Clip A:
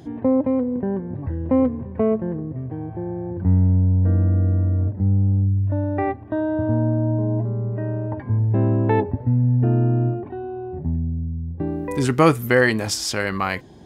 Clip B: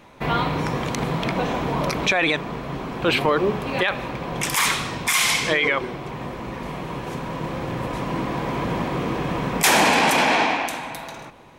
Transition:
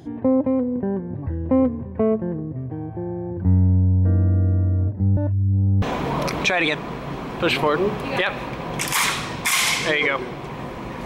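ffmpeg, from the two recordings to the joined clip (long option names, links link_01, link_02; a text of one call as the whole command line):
ffmpeg -i cue0.wav -i cue1.wav -filter_complex "[0:a]apad=whole_dur=11.05,atrim=end=11.05,asplit=2[link_01][link_02];[link_01]atrim=end=5.172[link_03];[link_02]atrim=start=5.168:end=5.822,asetpts=PTS-STARTPTS,areverse[link_04];[1:a]atrim=start=1.438:end=6.67[link_05];[link_03][link_04]acrossfade=duration=0.004:curve1=hsin:curve2=hsin[link_06];[link_06][link_05]acrossfade=duration=0.004:curve1=hsin:curve2=hsin" out.wav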